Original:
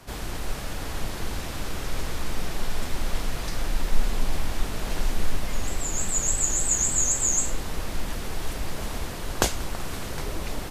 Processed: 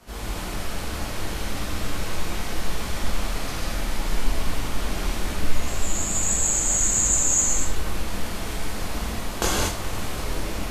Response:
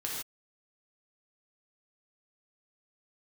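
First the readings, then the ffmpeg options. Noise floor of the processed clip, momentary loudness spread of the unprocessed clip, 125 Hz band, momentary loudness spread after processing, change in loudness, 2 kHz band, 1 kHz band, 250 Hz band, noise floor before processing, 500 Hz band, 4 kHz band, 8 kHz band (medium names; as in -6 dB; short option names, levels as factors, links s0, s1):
-31 dBFS, 13 LU, +2.5 dB, 13 LU, +3.0 dB, +3.5 dB, +3.5 dB, +3.5 dB, -33 dBFS, +2.5 dB, +3.5 dB, +3.0 dB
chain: -filter_complex "[0:a]flanger=delay=17:depth=7.5:speed=1.1[s0];[1:a]atrim=start_sample=2205,asetrate=30429,aresample=44100[s1];[s0][s1]afir=irnorm=-1:irlink=0"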